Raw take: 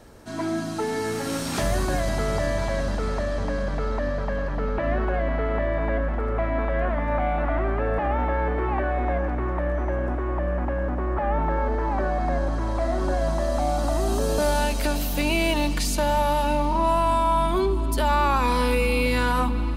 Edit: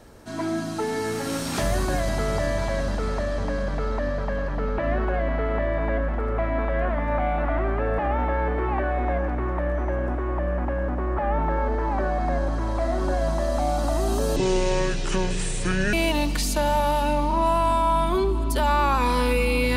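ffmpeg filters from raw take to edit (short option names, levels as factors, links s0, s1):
-filter_complex "[0:a]asplit=3[s0][s1][s2];[s0]atrim=end=14.364[s3];[s1]atrim=start=14.36:end=15.35,asetpts=PTS-STARTPTS,asetrate=27783,aresample=44100[s4];[s2]atrim=start=15.346[s5];[s3][s4]acrossfade=d=0.004:c1=hsin:c2=hsin[s6];[s6][s5]acrossfade=d=0.004:c1=hsin:c2=hsin"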